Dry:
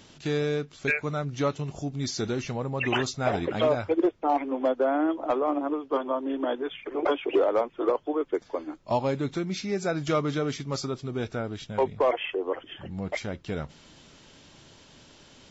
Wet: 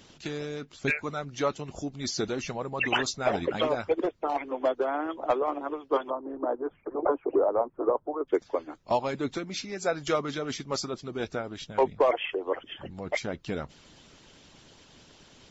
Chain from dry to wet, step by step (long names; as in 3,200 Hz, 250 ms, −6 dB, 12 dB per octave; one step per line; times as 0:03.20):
0:06.10–0:08.28: low-pass filter 1,200 Hz 24 dB per octave
harmonic and percussive parts rebalanced harmonic −12 dB
level +2.5 dB